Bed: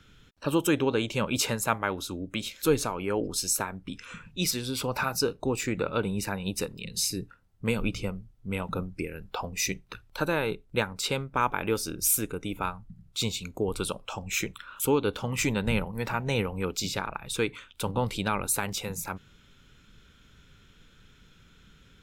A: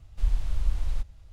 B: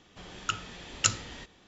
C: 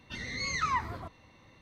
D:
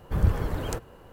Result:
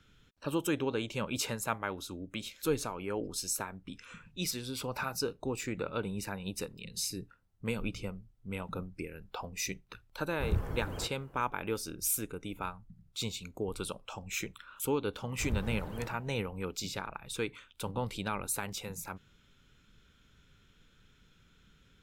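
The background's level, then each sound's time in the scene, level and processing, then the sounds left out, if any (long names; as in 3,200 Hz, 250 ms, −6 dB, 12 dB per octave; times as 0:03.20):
bed −7 dB
0:10.29: mix in D −9 dB + parametric band 4,000 Hz −5 dB 0.78 octaves
0:15.29: mix in D −12.5 dB
not used: A, B, C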